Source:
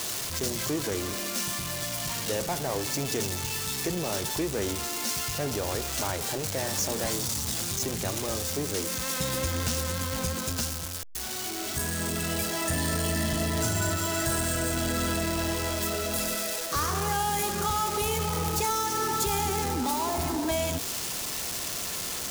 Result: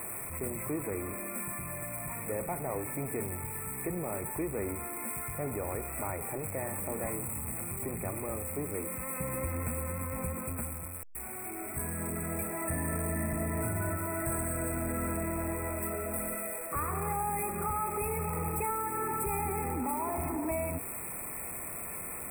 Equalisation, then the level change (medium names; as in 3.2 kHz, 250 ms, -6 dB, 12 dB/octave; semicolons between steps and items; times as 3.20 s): brick-wall FIR band-stop 2.6–7.7 kHz; band-stop 1.6 kHz, Q 6.2; -4.5 dB